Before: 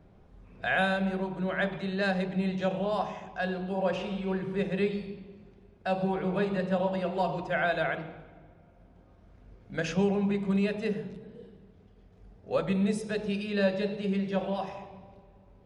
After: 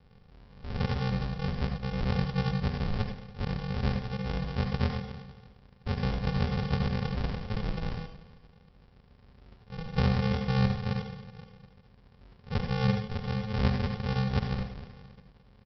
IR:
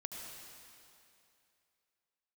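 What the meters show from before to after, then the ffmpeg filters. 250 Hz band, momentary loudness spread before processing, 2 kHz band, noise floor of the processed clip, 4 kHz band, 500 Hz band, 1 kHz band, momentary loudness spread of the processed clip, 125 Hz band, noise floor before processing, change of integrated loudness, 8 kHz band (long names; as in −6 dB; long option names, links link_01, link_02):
−2.5 dB, 10 LU, −7.0 dB, −59 dBFS, +1.0 dB, −8.5 dB, −4.0 dB, 14 LU, +6.5 dB, −58 dBFS, −1.0 dB, can't be measured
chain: -filter_complex "[0:a]lowpass=1200,aresample=11025,acrusher=samples=34:mix=1:aa=0.000001,aresample=44100[link_01];[1:a]atrim=start_sample=2205,atrim=end_sample=4410[link_02];[link_01][link_02]afir=irnorm=-1:irlink=0,volume=4dB"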